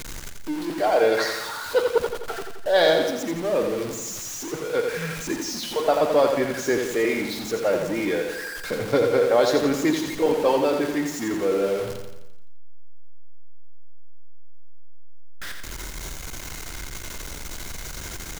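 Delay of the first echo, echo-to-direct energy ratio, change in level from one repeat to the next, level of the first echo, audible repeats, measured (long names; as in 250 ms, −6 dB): 86 ms, −4.5 dB, −5.5 dB, −6.0 dB, 6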